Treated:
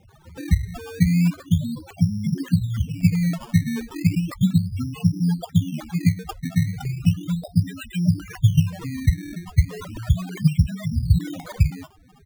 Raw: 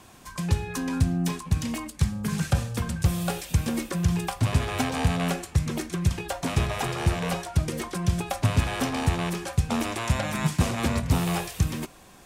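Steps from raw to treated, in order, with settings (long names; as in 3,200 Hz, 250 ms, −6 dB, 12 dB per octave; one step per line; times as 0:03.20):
pitch shifter gated in a rhythm +10 semitones, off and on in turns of 260 ms
drawn EQ curve 160 Hz 0 dB, 570 Hz −16 dB, 2,500 Hz −18 dB, 8,200 Hz +13 dB, 12,000 Hz +12 dB
far-end echo of a speakerphone 210 ms, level −29 dB
spectral peaks only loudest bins 4
sample-and-hold swept by an LFO 15×, swing 100% 0.35 Hz
dynamic equaliser 180 Hz, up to +3 dB, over −35 dBFS, Q 4.6
level +7.5 dB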